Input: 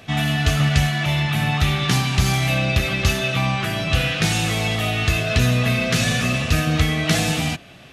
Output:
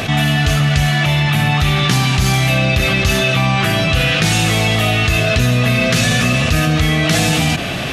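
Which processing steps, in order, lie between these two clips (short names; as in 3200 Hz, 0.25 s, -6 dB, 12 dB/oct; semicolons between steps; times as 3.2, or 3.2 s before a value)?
fast leveller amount 70%; gain +1 dB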